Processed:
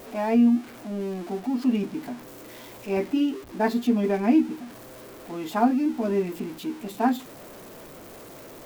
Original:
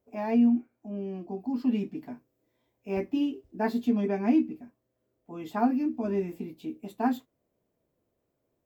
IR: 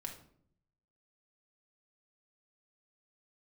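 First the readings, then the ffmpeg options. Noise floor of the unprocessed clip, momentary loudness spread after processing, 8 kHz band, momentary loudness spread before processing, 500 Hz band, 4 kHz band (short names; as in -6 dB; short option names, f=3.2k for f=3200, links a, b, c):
-79 dBFS, 22 LU, n/a, 16 LU, +5.0 dB, +8.5 dB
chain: -af "aeval=exprs='val(0)+0.5*0.00841*sgn(val(0))':c=same,equalizer=f=65:t=o:w=2.4:g=-8,volume=5dB"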